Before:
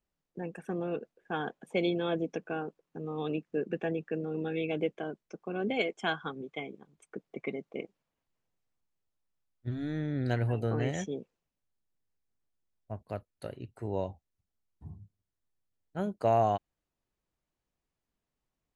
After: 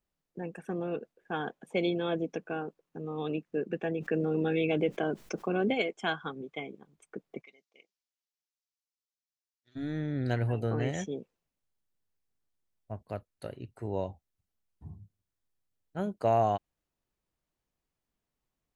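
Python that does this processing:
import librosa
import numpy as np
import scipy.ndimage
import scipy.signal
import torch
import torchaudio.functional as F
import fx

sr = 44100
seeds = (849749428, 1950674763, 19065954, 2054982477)

y = fx.env_flatten(x, sr, amount_pct=50, at=(4.0, 5.73), fade=0.02)
y = fx.bandpass_q(y, sr, hz=5400.0, q=1.9, at=(7.41, 9.75), fade=0.02)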